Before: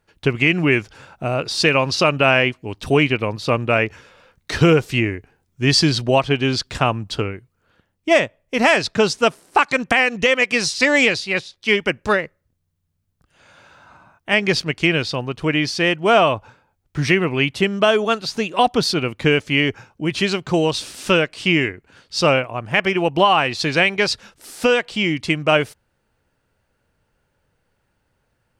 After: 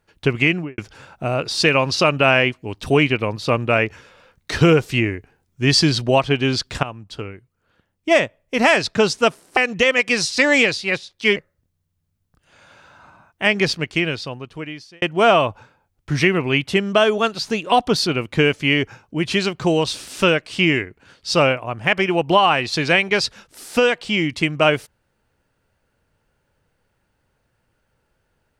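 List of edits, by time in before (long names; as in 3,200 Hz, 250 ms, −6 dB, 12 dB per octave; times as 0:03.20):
0:00.44–0:00.78: fade out and dull
0:06.83–0:08.23: fade in, from −14.5 dB
0:09.57–0:10.00: remove
0:11.79–0:12.23: remove
0:14.45–0:15.89: fade out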